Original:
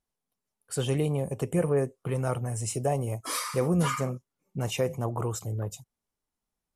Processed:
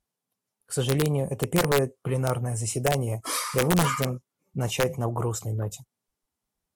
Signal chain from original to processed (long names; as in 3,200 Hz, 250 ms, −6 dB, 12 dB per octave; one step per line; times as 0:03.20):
wrap-around overflow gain 17 dB
level +3 dB
Ogg Vorbis 64 kbit/s 48,000 Hz